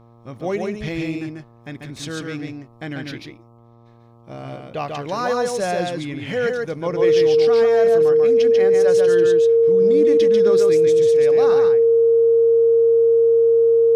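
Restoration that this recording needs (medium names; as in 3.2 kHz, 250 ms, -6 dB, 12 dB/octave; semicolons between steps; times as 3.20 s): de-hum 117.1 Hz, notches 11; band-stop 460 Hz, Q 30; inverse comb 142 ms -3.5 dB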